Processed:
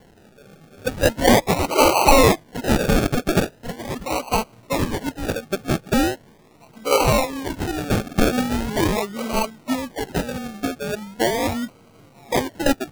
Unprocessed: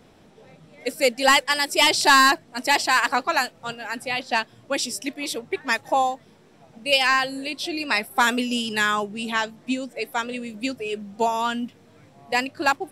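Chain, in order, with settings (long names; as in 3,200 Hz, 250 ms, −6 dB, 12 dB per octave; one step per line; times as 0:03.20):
hearing-aid frequency compression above 2,100 Hz 4 to 1
sample-and-hold swept by an LFO 35×, swing 60% 0.4 Hz
level +2 dB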